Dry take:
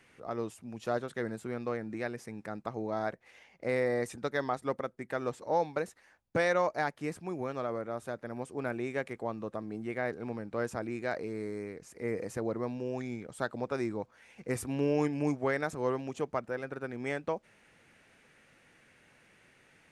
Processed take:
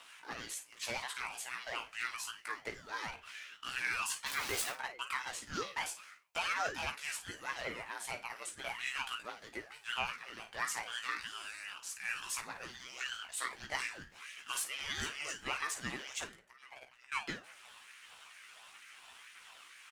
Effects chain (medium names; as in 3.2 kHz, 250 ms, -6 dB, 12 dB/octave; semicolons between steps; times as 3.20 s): 4.26–4.70 s: jump at every zero crossing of -34 dBFS; Bessel high-pass 2.1 kHz, order 4; peak limiter -36 dBFS, peak gain reduction 11.5 dB; waveshaping leveller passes 1; 16.13–17.12 s: slow attack 664 ms; phaser 1.6 Hz, delay 1.3 ms, feedback 37%; early reflections 16 ms -3.5 dB, 53 ms -10.5 dB; reverberation RT60 0.55 s, pre-delay 6 ms, DRR 6 dB; ring modulator with a swept carrier 570 Hz, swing 50%, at 2.2 Hz; trim +8.5 dB